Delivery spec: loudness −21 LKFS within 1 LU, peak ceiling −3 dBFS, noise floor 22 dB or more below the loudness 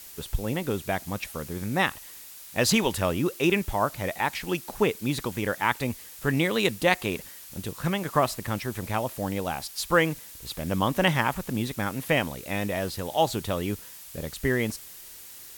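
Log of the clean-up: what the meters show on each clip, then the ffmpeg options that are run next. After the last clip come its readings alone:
background noise floor −45 dBFS; target noise floor −50 dBFS; integrated loudness −27.5 LKFS; sample peak −6.5 dBFS; target loudness −21.0 LKFS
→ -af "afftdn=noise_reduction=6:noise_floor=-45"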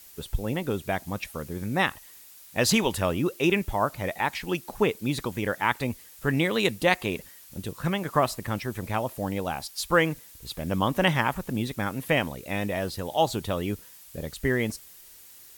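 background noise floor −50 dBFS; integrated loudness −27.5 LKFS; sample peak −6.5 dBFS; target loudness −21.0 LKFS
→ -af "volume=6.5dB,alimiter=limit=-3dB:level=0:latency=1"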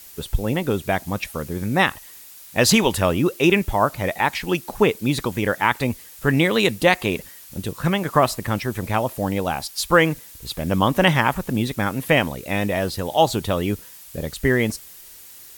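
integrated loudness −21.0 LKFS; sample peak −3.0 dBFS; background noise floor −43 dBFS

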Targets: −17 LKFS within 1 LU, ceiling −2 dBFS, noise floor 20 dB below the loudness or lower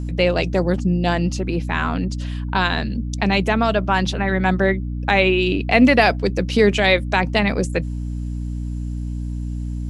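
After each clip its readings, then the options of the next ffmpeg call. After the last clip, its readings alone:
mains hum 60 Hz; hum harmonics up to 300 Hz; level of the hum −23 dBFS; integrated loudness −19.5 LKFS; sample peak −2.0 dBFS; target loudness −17.0 LKFS
→ -af "bandreject=frequency=60:width_type=h:width=6,bandreject=frequency=120:width_type=h:width=6,bandreject=frequency=180:width_type=h:width=6,bandreject=frequency=240:width_type=h:width=6,bandreject=frequency=300:width_type=h:width=6"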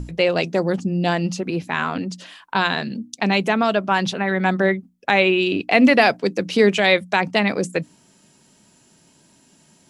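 mains hum none found; integrated loudness −19.5 LKFS; sample peak −2.0 dBFS; target loudness −17.0 LKFS
→ -af "volume=2.5dB,alimiter=limit=-2dB:level=0:latency=1"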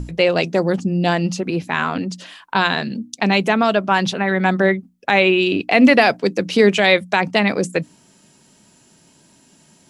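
integrated loudness −17.5 LKFS; sample peak −2.0 dBFS; background noise floor −54 dBFS

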